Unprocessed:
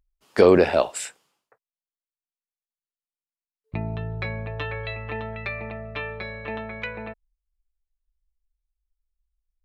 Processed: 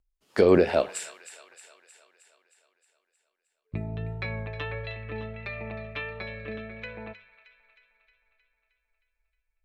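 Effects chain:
pitch vibrato 1.5 Hz 17 cents
rotating-speaker cabinet horn 5 Hz, later 0.65 Hz, at 0:02.23
flanger 1.4 Hz, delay 9.6 ms, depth 1.6 ms, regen +88%
delay with a high-pass on its return 312 ms, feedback 59%, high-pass 1,600 Hz, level −11.5 dB
level +3 dB

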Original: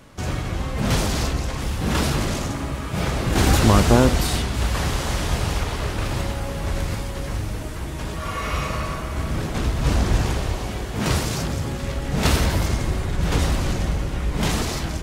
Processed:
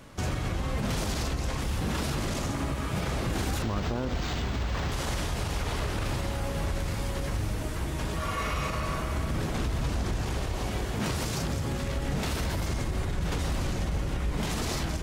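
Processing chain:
downward compressor 2 to 1, threshold −24 dBFS, peak gain reduction 8.5 dB
brickwall limiter −19.5 dBFS, peak gain reduction 9.5 dB
0:03.62–0:04.92: linearly interpolated sample-rate reduction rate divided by 4×
level −1.5 dB

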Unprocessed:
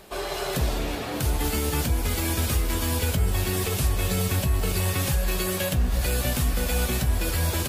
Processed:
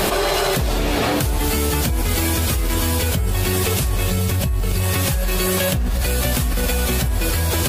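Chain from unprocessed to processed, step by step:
0:04.10–0:04.83: low-shelf EQ 140 Hz +6.5 dB
envelope flattener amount 100%
level −5 dB

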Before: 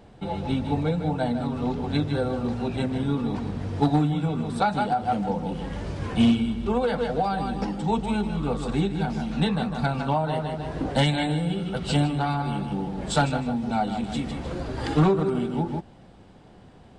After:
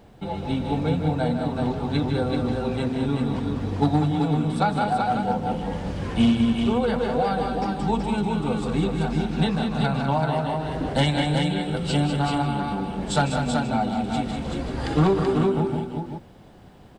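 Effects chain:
bit-depth reduction 12 bits, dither none
multi-tap delay 197/382 ms −7.5/−4.5 dB

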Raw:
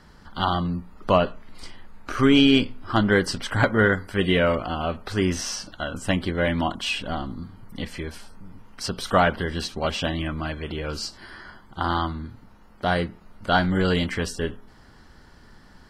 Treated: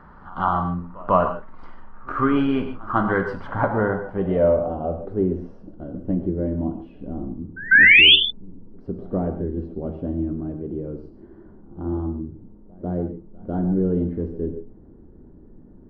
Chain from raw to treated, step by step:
mu-law and A-law mismatch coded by mu
low-pass filter sweep 1,200 Hz → 360 Hz, 0:03.23–0:05.70
sound drawn into the spectrogram rise, 0:07.71–0:08.16, 1,500–3,600 Hz −8 dBFS
echo ahead of the sound 147 ms −23 dB
reverb whose tail is shaped and stops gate 170 ms flat, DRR 6 dB
level −3.5 dB

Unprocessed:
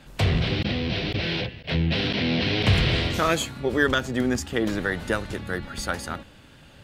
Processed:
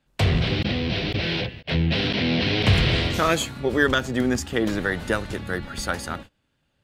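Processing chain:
noise gate −40 dBFS, range −23 dB
level +1.5 dB

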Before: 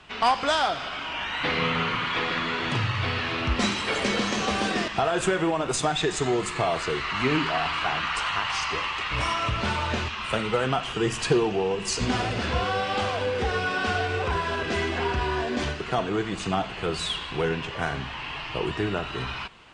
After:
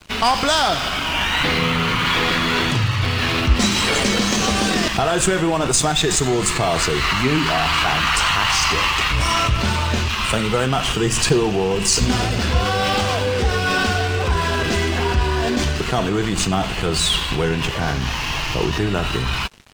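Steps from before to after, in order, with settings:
0:17.80–0:18.79: linear delta modulator 32 kbit/s, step −37.5 dBFS
bass and treble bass +12 dB, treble +9 dB
in parallel at −1.5 dB: compressor whose output falls as the input rises −27 dBFS, ratio −1
on the sum: dynamic equaliser 120 Hz, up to −6 dB, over −32 dBFS, Q 0.71
dead-zone distortion −36 dBFS
level +3 dB

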